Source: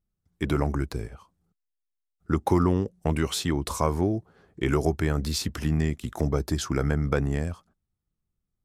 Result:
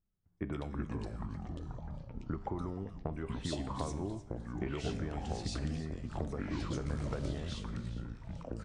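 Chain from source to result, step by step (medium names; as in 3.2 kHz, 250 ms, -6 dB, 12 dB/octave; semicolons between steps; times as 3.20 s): treble shelf 4.8 kHz -11.5 dB; compression 10:1, threshold -31 dBFS, peak gain reduction 15 dB; feedback comb 100 Hz, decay 0.82 s, harmonics all, mix 60%; 6.74–7.26 s: short-mantissa float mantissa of 2-bit; on a send: frequency-shifting echo 304 ms, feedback 35%, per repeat -96 Hz, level -15 dB; on the sum: ever faster or slower copies 231 ms, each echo -5 st, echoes 3; bands offset in time lows, highs 120 ms, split 2.3 kHz; trim +4 dB; MP3 48 kbps 22.05 kHz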